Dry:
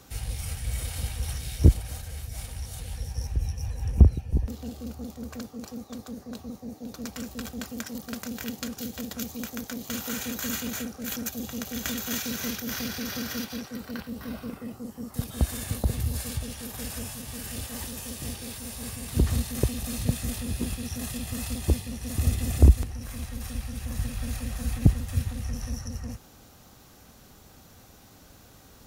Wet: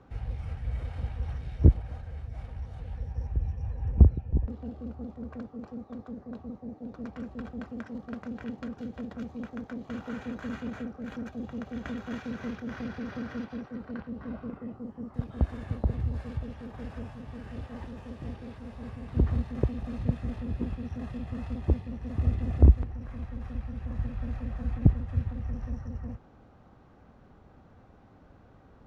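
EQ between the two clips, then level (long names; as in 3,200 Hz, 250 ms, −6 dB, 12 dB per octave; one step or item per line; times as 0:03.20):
low-pass filter 1,400 Hz 12 dB per octave
−1.5 dB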